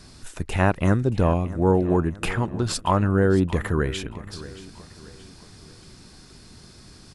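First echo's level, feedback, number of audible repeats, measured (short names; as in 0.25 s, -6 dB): -17.0 dB, 43%, 3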